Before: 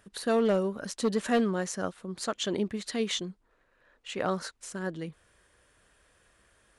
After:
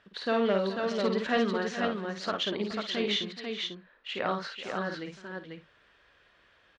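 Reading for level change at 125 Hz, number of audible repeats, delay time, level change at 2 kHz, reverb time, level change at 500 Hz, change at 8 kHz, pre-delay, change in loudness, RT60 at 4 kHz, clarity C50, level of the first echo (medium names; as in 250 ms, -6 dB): -2.5 dB, 4, 52 ms, +4.0 dB, no reverb, 0.0 dB, -11.0 dB, no reverb, 0.0 dB, no reverb, no reverb, -5.0 dB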